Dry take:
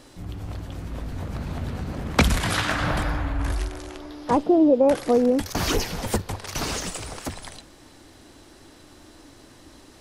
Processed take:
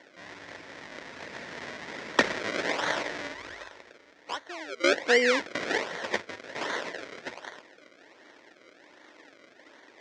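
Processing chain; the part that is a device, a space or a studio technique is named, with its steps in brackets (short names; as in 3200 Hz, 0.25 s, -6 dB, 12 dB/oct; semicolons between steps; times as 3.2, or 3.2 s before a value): 3.34–4.84 EQ curve 110 Hz 0 dB, 190 Hz -25 dB, 510 Hz -18 dB, 1700 Hz +1 dB, 2500 Hz -6 dB, 12000 Hz +3 dB; circuit-bent sampling toy (decimation with a swept rate 34×, swing 100% 1.3 Hz; speaker cabinet 570–5700 Hz, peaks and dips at 770 Hz -7 dB, 1200 Hz -7 dB, 1900 Hz +7 dB, 2800 Hz -4 dB, 4400 Hz -3 dB); gain +2 dB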